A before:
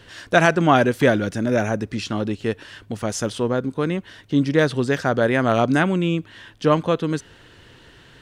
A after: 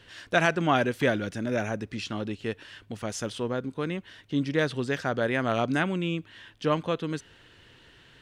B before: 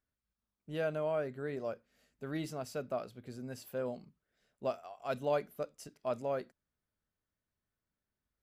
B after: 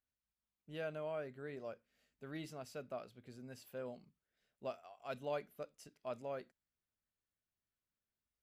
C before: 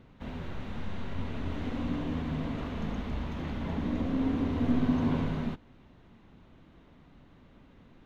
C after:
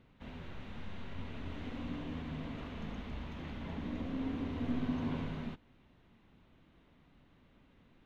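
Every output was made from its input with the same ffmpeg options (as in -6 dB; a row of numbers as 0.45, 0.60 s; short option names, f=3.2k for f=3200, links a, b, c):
-af "equalizer=f=2.7k:t=o:w=1.4:g=4.5,volume=-8.5dB"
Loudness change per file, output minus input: -8.0, -8.0, -8.5 LU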